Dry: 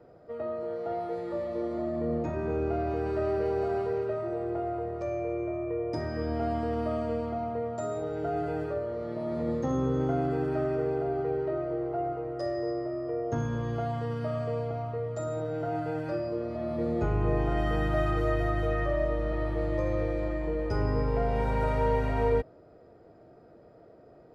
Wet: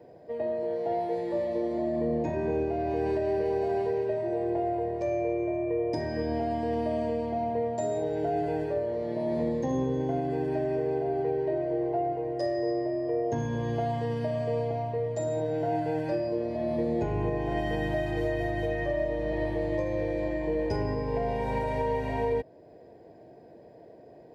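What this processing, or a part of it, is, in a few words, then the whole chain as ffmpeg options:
PA system with an anti-feedback notch: -af "highpass=f=130:p=1,asuperstop=centerf=1300:order=4:qfactor=2.7,alimiter=limit=0.0668:level=0:latency=1:release=379,volume=1.58"

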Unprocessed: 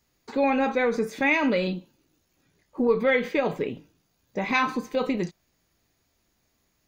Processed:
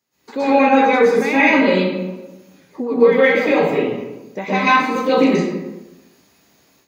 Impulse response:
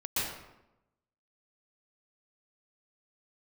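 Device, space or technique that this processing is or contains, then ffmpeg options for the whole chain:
far laptop microphone: -filter_complex "[1:a]atrim=start_sample=2205[s0];[0:a][s0]afir=irnorm=-1:irlink=0,highpass=180,dynaudnorm=f=170:g=3:m=3.55,volume=0.891"

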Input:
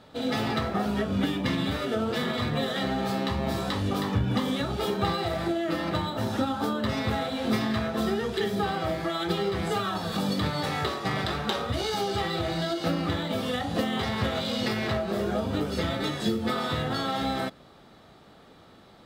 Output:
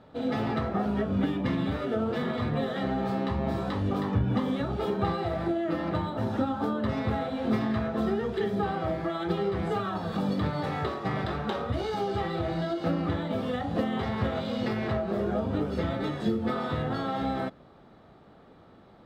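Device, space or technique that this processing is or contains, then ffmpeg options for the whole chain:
through cloth: -af "highshelf=f=2900:g=-17"

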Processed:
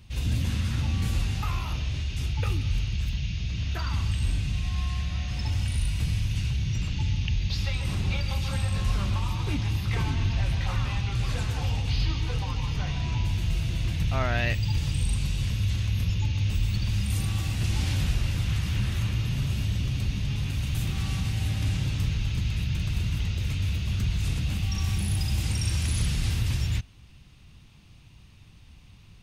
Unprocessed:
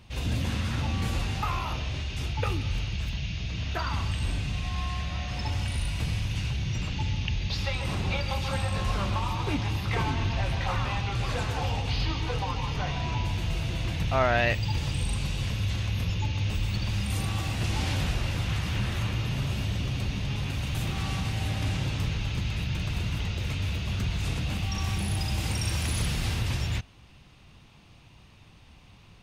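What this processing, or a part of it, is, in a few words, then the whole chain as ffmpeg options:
smiley-face EQ: -filter_complex "[0:a]asettb=1/sr,asplit=3[s0][s1][s2];[s0]atrim=end=25.434[s3];[s1]atrim=start=25.43:end=26.3,asetpts=PTS-STARTPTS,afade=t=in:d=0.004:c=qsin,afade=t=out:st=0.866:d=0.004:c=qsin,lowpass=11000[s4];[s2]atrim=start=26.296[s5];[s3][s4]acrossfade=d=0.004:c1=hsin:c2=qsin[s6];[s6][s5]acrossfade=d=0.004:c1=qsin:c2=hsin,lowshelf=f=180:g=6.5,equalizer=f=680:t=o:w=2:g=-6,highshelf=f=6100:g=5.5,volume=0.794"

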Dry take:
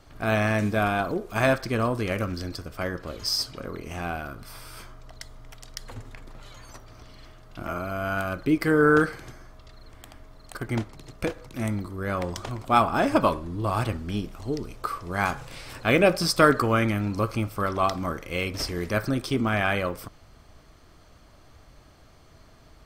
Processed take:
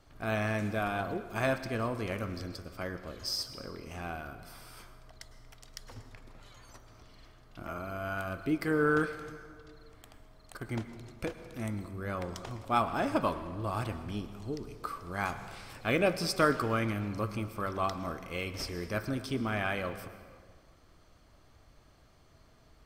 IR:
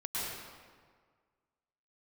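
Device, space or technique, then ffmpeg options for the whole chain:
saturated reverb return: -filter_complex "[0:a]asplit=2[s0][s1];[1:a]atrim=start_sample=2205[s2];[s1][s2]afir=irnorm=-1:irlink=0,asoftclip=type=tanh:threshold=0.2,volume=0.2[s3];[s0][s3]amix=inputs=2:normalize=0,volume=0.355"

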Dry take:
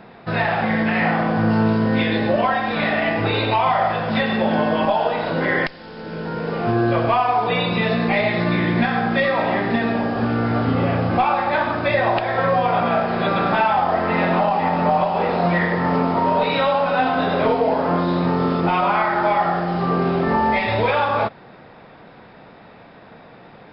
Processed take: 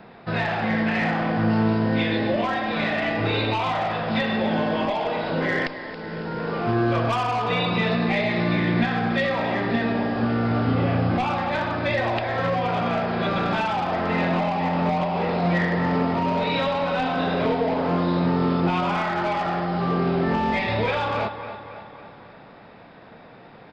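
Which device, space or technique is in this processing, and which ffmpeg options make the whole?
one-band saturation: -filter_complex "[0:a]asettb=1/sr,asplit=3[s0][s1][s2];[s0]atrim=end=6.394[s3];[s1]atrim=start=6.39:end=7.96,asetpts=PTS-STARTPTS,afade=t=in:d=0.004:c=qsin,afade=t=out:st=1.566:d=0.004:c=qsin,equalizer=f=1200:t=o:w=0.81:g=4.5[s4];[s2]atrim=start=7.956[s5];[s3][s4]acrossfade=d=0.004:c1=hsin:c2=qsin[s6];[s6][s5]acrossfade=d=0.004:c1=qsin:c2=hsin,aecho=1:1:276|552|828|1104|1380:0.211|0.112|0.0594|0.0315|0.0167,acrossover=split=440|2100[s7][s8][s9];[s8]asoftclip=type=tanh:threshold=0.0841[s10];[s7][s10][s9]amix=inputs=3:normalize=0,volume=0.75"

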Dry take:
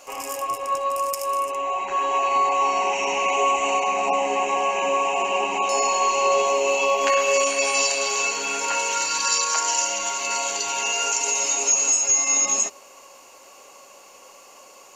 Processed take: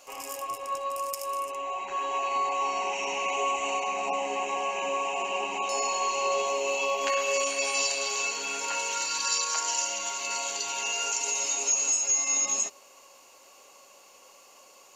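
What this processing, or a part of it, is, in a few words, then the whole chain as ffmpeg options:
presence and air boost: -af "equalizer=f=3800:t=o:w=0.91:g=4,highshelf=f=10000:g=4.5,volume=0.398"

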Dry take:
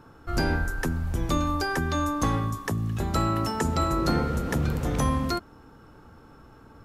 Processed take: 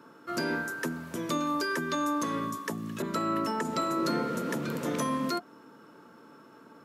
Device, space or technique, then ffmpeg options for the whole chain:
PA system with an anti-feedback notch: -filter_complex "[0:a]highpass=f=190:w=0.5412,highpass=f=190:w=1.3066,asuperstop=centerf=780:order=20:qfactor=6.6,alimiter=limit=0.106:level=0:latency=1:release=208,asettb=1/sr,asplit=3[s0][s1][s2];[s0]atrim=end=3.024[s3];[s1]atrim=start=3.02:end=3.65,asetpts=PTS-STARTPTS,afade=t=in:d=0.004:c=qsin,afade=t=out:st=0.626:d=0.004:c=qsin,adynamicequalizer=threshold=0.00398:dfrequency=2900:dqfactor=0.7:tfrequency=2900:tqfactor=0.7:attack=5:release=100:ratio=0.375:range=3.5:mode=cutabove:tftype=highshelf[s4];[s2]atrim=start=3.646[s5];[s3][s4]acrossfade=d=0.004:c1=hsin:c2=qsin[s6];[s6][s5]acrossfade=d=0.004:c1=qsin:c2=hsin"

